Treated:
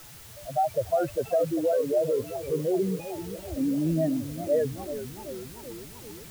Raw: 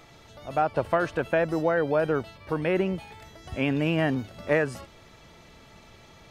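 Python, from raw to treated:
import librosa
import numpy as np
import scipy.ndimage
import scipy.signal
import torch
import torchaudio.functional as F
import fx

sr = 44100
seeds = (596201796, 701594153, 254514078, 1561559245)

y = fx.spec_expand(x, sr, power=3.7)
y = fx.quant_dither(y, sr, seeds[0], bits=8, dither='triangular')
y = fx.echo_warbled(y, sr, ms=392, feedback_pct=65, rate_hz=2.8, cents=209, wet_db=-11.5)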